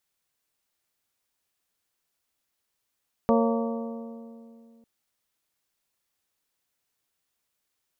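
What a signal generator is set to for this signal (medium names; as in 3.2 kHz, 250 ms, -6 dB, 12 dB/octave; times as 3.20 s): metal hit bell, lowest mode 230 Hz, modes 6, decay 2.67 s, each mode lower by 2 dB, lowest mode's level -20 dB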